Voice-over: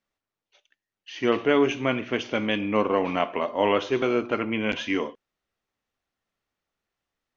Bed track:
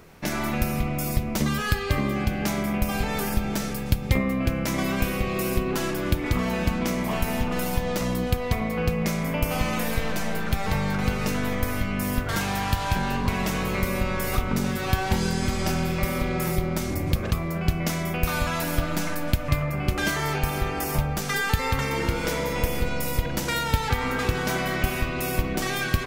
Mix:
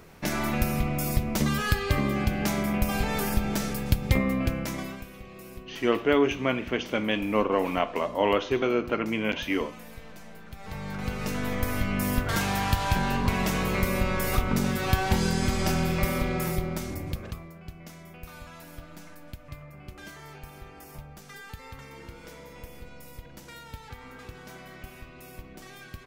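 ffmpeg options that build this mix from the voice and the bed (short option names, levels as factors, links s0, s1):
-filter_complex "[0:a]adelay=4600,volume=0.841[s0];[1:a]volume=7.08,afade=t=out:st=4.33:d=0.71:silence=0.133352,afade=t=in:st=10.54:d=1.38:silence=0.125893,afade=t=out:st=16.05:d=1.51:silence=0.11885[s1];[s0][s1]amix=inputs=2:normalize=0"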